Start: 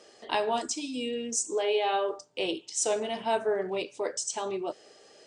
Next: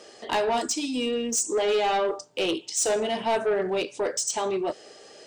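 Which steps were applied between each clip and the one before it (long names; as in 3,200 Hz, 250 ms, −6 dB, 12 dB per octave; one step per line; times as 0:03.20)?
soft clipping −26 dBFS, distortion −13 dB
level +7 dB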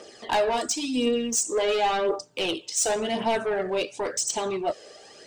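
phase shifter 0.93 Hz, delay 2 ms, feedback 44%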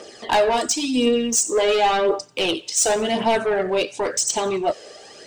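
delay with a high-pass on its return 91 ms, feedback 46%, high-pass 1,500 Hz, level −23 dB
level +5.5 dB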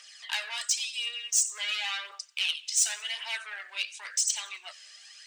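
four-pole ladder high-pass 1,500 Hz, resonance 20%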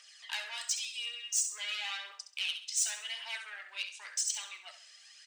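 repeating echo 67 ms, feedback 32%, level −10 dB
level −6 dB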